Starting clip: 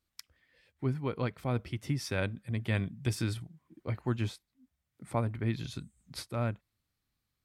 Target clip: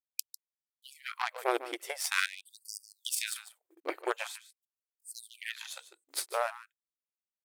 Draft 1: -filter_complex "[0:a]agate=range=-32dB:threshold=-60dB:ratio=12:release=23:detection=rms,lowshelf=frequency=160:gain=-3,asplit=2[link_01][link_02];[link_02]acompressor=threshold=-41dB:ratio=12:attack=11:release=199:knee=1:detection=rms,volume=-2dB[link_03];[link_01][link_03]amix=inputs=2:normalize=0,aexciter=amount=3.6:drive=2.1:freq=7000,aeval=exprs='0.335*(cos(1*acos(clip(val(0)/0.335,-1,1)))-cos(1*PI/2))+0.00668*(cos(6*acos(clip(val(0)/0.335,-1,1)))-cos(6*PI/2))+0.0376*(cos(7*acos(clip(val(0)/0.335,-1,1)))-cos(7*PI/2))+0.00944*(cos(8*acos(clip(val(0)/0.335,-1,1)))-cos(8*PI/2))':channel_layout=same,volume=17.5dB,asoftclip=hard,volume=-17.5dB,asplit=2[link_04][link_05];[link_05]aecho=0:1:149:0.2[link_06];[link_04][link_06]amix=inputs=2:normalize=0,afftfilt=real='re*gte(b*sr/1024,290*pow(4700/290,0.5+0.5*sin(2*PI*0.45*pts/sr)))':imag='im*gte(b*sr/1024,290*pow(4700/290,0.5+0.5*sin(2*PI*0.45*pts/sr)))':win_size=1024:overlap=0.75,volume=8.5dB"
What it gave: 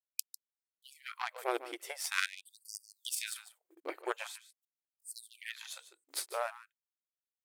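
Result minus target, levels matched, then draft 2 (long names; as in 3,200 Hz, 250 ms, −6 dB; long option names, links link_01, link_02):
downward compressor: peak gain reduction +8.5 dB
-filter_complex "[0:a]agate=range=-32dB:threshold=-60dB:ratio=12:release=23:detection=rms,lowshelf=frequency=160:gain=-3,asplit=2[link_01][link_02];[link_02]acompressor=threshold=-31.5dB:ratio=12:attack=11:release=199:knee=1:detection=rms,volume=-2dB[link_03];[link_01][link_03]amix=inputs=2:normalize=0,aexciter=amount=3.6:drive=2.1:freq=7000,aeval=exprs='0.335*(cos(1*acos(clip(val(0)/0.335,-1,1)))-cos(1*PI/2))+0.00668*(cos(6*acos(clip(val(0)/0.335,-1,1)))-cos(6*PI/2))+0.0376*(cos(7*acos(clip(val(0)/0.335,-1,1)))-cos(7*PI/2))+0.00944*(cos(8*acos(clip(val(0)/0.335,-1,1)))-cos(8*PI/2))':channel_layout=same,volume=17.5dB,asoftclip=hard,volume=-17.5dB,asplit=2[link_04][link_05];[link_05]aecho=0:1:149:0.2[link_06];[link_04][link_06]amix=inputs=2:normalize=0,afftfilt=real='re*gte(b*sr/1024,290*pow(4700/290,0.5+0.5*sin(2*PI*0.45*pts/sr)))':imag='im*gte(b*sr/1024,290*pow(4700/290,0.5+0.5*sin(2*PI*0.45*pts/sr)))':win_size=1024:overlap=0.75,volume=8.5dB"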